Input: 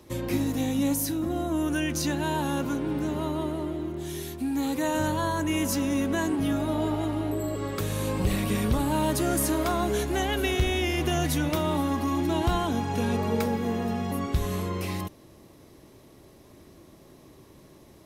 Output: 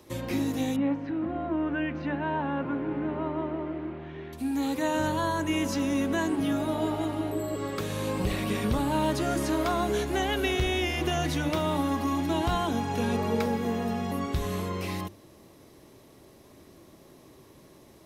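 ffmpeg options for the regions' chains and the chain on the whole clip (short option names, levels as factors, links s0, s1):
-filter_complex "[0:a]asettb=1/sr,asplit=3[s0][s1][s2];[s0]atrim=end=0.764[s3];[s1]atrim=start=0.76:end=4.33,asetpts=PTS-STARTPTS,afade=t=in:d=0.004:c=qsin,afade=t=out:st=3.566:d=0.004:c=qsin,lowshelf=f=66:g=-10,acrusher=bits=6:mix=0:aa=0.5,lowpass=f=2300:w=0.5412,lowpass=f=2300:w=1.3066[s4];[s2]atrim=start=4.326[s5];[s3][s4]acrossfade=d=0.004:c1=hsin:c2=qsin[s6];[s6][s5]acrossfade=d=0.004:c1=qsin:c2=hsin,acrossover=split=6000[s7][s8];[s8]acompressor=threshold=0.00501:ratio=4:attack=1:release=60[s9];[s7][s9]amix=inputs=2:normalize=0,lowshelf=f=100:g=-5,bandreject=f=50:t=h:w=6,bandreject=f=100:t=h:w=6,bandreject=f=150:t=h:w=6,bandreject=f=200:t=h:w=6,bandreject=f=250:t=h:w=6,bandreject=f=300:t=h:w=6,bandreject=f=350:t=h:w=6"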